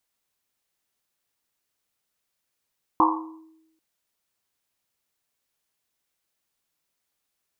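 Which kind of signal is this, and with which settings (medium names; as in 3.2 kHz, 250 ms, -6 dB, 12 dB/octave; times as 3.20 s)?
Risset drum length 0.79 s, pitch 320 Hz, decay 0.96 s, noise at 1 kHz, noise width 260 Hz, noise 60%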